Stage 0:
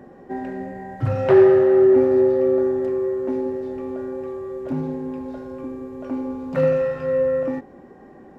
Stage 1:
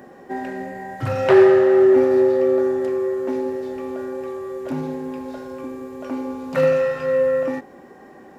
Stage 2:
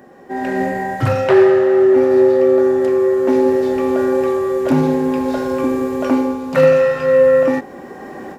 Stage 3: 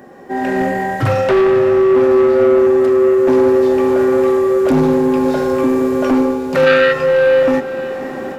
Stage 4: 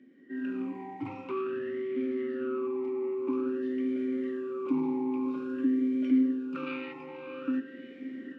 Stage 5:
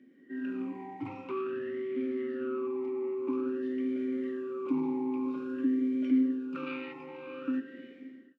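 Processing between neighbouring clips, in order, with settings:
spectral tilt +2.5 dB per octave; level +4 dB
automatic gain control gain up to 16 dB; level −1 dB
soft clipping −12.5 dBFS, distortion −12 dB; gain on a spectral selection 0:06.67–0:06.92, 1,200–4,900 Hz +10 dB; feedback delay with all-pass diffusion 586 ms, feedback 46%, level −13 dB; level +4 dB
formant filter swept between two vowels i-u 0.5 Hz; level −7 dB
fade-out on the ending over 0.60 s; level −1.5 dB

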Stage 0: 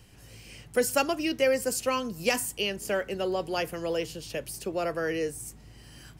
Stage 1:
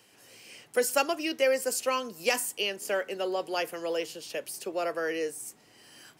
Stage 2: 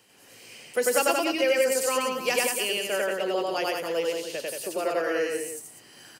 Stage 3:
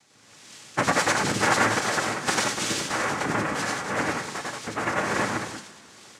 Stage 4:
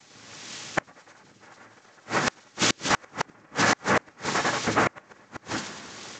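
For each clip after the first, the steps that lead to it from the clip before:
high-pass filter 350 Hz 12 dB per octave
notch filter 5,400 Hz, Q 24; on a send: loudspeakers that aren't time-aligned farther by 33 metres 0 dB, 61 metres −4 dB, 100 metres −9 dB
cochlear-implant simulation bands 3; on a send at −7 dB: convolution reverb, pre-delay 3 ms
gate with flip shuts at −16 dBFS, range −37 dB; level +7.5 dB; G.722 64 kbit/s 16,000 Hz

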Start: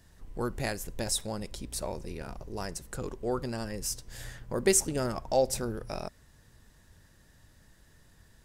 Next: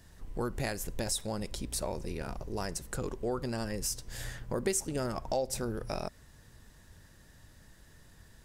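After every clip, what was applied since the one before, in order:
downward compressor 3 to 1, threshold −33 dBFS, peak gain reduction 10.5 dB
level +2.5 dB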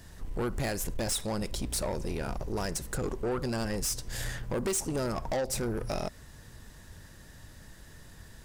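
soft clipping −32.5 dBFS, distortion −10 dB
level +6.5 dB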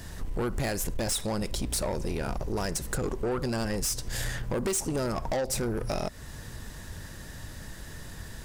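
downward compressor 2 to 1, threshold −41 dBFS, peak gain reduction 7.5 dB
level +8.5 dB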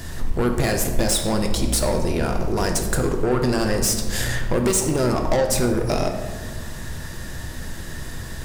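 convolution reverb RT60 1.5 s, pre-delay 3 ms, DRR 3.5 dB
level +7.5 dB

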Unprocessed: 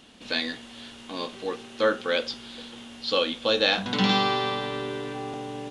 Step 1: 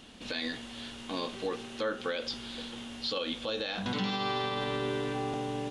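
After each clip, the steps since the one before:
low-shelf EQ 95 Hz +7 dB
downward compressor, threshold −26 dBFS, peak gain reduction 9 dB
brickwall limiter −22.5 dBFS, peak gain reduction 8 dB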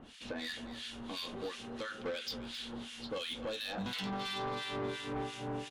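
two-band tremolo in antiphase 2.9 Hz, depth 100%, crossover 1,500 Hz
soft clipping −35.5 dBFS, distortion −11 dB
single-tap delay 266 ms −13.5 dB
level +2.5 dB

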